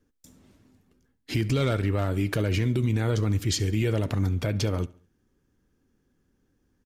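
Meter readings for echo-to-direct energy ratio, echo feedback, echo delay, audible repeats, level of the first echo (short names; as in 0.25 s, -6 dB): -21.0 dB, 45%, 70 ms, 2, -22.0 dB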